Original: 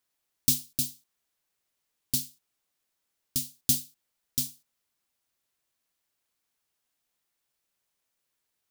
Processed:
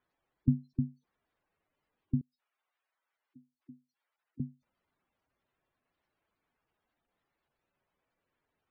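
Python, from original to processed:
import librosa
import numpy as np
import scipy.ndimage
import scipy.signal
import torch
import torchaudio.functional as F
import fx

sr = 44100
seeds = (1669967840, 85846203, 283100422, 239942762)

y = fx.lowpass(x, sr, hz=1500.0, slope=6)
y = fx.spec_gate(y, sr, threshold_db=-10, keep='strong')
y = fx.highpass(y, sr, hz=940.0, slope=12, at=(2.21, 4.4))
y = F.gain(torch.from_numpy(y), 8.5).numpy()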